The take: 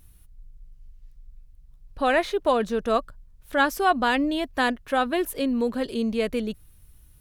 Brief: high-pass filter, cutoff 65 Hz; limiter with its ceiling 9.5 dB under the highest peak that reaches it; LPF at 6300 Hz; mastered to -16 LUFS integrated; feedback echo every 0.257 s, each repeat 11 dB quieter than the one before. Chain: HPF 65 Hz; LPF 6300 Hz; limiter -18 dBFS; feedback echo 0.257 s, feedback 28%, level -11 dB; gain +11.5 dB

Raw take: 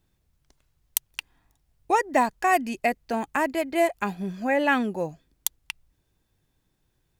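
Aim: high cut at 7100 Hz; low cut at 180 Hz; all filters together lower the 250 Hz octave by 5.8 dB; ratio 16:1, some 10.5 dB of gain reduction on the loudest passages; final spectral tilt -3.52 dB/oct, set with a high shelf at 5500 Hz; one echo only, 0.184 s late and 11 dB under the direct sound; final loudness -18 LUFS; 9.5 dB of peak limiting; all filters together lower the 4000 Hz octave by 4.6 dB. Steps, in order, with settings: HPF 180 Hz; LPF 7100 Hz; bell 250 Hz -6 dB; bell 4000 Hz -4.5 dB; high shelf 5500 Hz -5 dB; compressor 16:1, threshold -27 dBFS; limiter -22 dBFS; echo 0.184 s -11 dB; gain +16.5 dB

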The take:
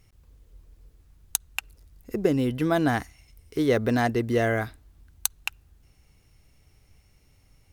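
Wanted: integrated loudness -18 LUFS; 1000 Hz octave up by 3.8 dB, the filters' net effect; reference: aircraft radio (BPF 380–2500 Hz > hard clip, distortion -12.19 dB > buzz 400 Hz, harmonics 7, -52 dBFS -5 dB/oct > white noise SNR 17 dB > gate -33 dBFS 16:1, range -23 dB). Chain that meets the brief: BPF 380–2500 Hz; bell 1000 Hz +6.5 dB; hard clip -18.5 dBFS; buzz 400 Hz, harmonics 7, -52 dBFS -5 dB/oct; white noise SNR 17 dB; gate -33 dBFS 16:1, range -23 dB; gain +11 dB

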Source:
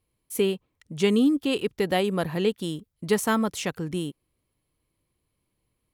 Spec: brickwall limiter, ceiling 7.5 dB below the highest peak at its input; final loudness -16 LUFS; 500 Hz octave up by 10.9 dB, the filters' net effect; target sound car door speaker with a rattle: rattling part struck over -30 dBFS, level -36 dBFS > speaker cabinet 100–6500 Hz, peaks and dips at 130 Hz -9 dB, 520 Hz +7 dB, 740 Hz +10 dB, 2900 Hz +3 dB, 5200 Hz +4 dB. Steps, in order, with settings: bell 500 Hz +9 dB; limiter -13.5 dBFS; rattling part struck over -30 dBFS, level -36 dBFS; speaker cabinet 100–6500 Hz, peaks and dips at 130 Hz -9 dB, 520 Hz +7 dB, 740 Hz +10 dB, 2900 Hz +3 dB, 5200 Hz +4 dB; gain +5 dB

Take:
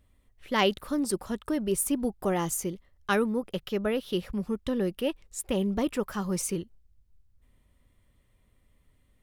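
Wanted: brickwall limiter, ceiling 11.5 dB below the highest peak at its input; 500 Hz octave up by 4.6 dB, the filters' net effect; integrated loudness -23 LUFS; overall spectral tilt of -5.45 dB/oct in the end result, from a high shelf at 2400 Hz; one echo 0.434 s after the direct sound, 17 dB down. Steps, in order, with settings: bell 500 Hz +6 dB; high shelf 2400 Hz -6.5 dB; limiter -22.5 dBFS; echo 0.434 s -17 dB; gain +9.5 dB

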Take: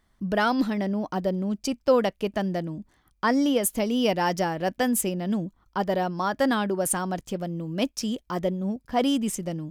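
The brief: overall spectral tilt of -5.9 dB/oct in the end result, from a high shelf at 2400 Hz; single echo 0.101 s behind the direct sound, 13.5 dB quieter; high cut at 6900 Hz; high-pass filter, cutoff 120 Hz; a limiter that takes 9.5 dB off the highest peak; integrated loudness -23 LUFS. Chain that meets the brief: HPF 120 Hz; LPF 6900 Hz; high shelf 2400 Hz -8 dB; limiter -19.5 dBFS; echo 0.101 s -13.5 dB; gain +6 dB

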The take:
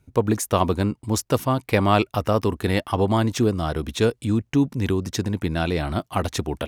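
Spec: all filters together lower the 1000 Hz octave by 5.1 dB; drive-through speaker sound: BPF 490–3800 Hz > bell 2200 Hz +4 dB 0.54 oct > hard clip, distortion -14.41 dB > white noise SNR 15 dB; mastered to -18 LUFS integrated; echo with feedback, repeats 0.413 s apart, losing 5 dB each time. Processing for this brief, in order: BPF 490–3800 Hz; bell 1000 Hz -6.5 dB; bell 2200 Hz +4 dB 0.54 oct; feedback echo 0.413 s, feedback 56%, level -5 dB; hard clip -18 dBFS; white noise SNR 15 dB; gain +11 dB

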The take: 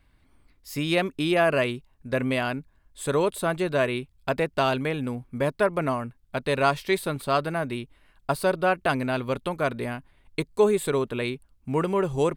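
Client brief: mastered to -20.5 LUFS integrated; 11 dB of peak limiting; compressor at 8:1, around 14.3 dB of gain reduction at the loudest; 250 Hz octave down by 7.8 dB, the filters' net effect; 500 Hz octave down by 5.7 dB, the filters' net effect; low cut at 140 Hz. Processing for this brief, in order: HPF 140 Hz; bell 250 Hz -8.5 dB; bell 500 Hz -5 dB; compressor 8:1, threshold -35 dBFS; gain +21.5 dB; limiter -7.5 dBFS

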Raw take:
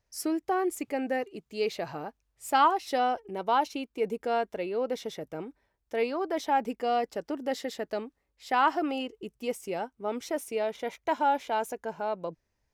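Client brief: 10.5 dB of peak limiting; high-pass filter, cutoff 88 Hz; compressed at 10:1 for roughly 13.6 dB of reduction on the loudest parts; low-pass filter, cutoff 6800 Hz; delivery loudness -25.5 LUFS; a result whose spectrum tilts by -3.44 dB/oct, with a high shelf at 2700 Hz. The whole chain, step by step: HPF 88 Hz; LPF 6800 Hz; high shelf 2700 Hz +3.5 dB; compressor 10:1, threshold -31 dBFS; gain +15.5 dB; limiter -15 dBFS

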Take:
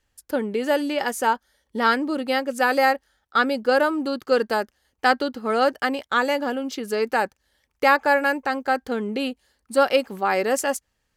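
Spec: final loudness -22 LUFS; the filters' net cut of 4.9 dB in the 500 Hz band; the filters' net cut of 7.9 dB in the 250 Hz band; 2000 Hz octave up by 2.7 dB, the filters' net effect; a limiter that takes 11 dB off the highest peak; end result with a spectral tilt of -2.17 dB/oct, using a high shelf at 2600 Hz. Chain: bell 250 Hz -8 dB; bell 500 Hz -4 dB; bell 2000 Hz +5.5 dB; high shelf 2600 Hz -4 dB; gain +5 dB; limiter -9.5 dBFS

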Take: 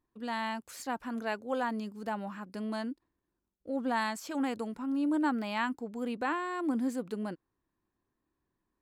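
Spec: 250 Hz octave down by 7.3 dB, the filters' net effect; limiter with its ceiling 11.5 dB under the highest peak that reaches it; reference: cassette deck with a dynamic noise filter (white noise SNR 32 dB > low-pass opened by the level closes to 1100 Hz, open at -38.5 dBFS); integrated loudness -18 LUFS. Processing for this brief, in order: bell 250 Hz -8.5 dB; limiter -30.5 dBFS; white noise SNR 32 dB; low-pass opened by the level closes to 1100 Hz, open at -38.5 dBFS; gain +23 dB

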